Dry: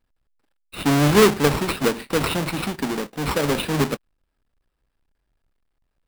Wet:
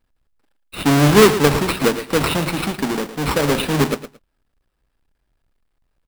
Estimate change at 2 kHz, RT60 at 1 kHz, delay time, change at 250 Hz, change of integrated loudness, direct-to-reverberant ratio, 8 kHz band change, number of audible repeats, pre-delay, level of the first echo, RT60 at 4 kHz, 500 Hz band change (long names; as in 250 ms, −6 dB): +4.0 dB, no reverb audible, 112 ms, +3.5 dB, +4.0 dB, no reverb audible, +4.0 dB, 2, no reverb audible, −12.5 dB, no reverb audible, +4.0 dB